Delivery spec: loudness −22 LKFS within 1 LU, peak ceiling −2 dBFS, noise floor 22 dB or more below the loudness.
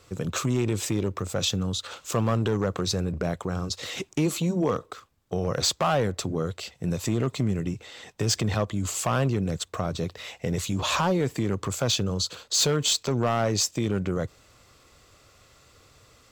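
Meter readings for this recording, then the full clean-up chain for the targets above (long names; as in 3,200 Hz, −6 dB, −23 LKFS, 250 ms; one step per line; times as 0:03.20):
share of clipped samples 0.8%; peaks flattened at −17.0 dBFS; integrated loudness −27.0 LKFS; sample peak −17.0 dBFS; target loudness −22.0 LKFS
→ clipped peaks rebuilt −17 dBFS
level +5 dB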